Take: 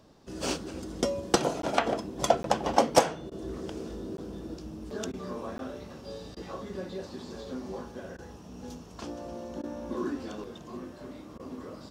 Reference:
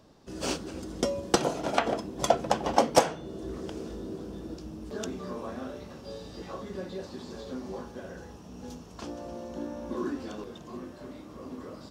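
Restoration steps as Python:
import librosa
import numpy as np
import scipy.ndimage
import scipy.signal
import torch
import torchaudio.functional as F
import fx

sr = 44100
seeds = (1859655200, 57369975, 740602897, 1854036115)

y = fx.fix_interpolate(x, sr, at_s=(1.62, 2.43, 4.17, 5.58), length_ms=12.0)
y = fx.fix_interpolate(y, sr, at_s=(3.3, 5.12, 6.35, 8.17, 9.62, 11.38), length_ms=14.0)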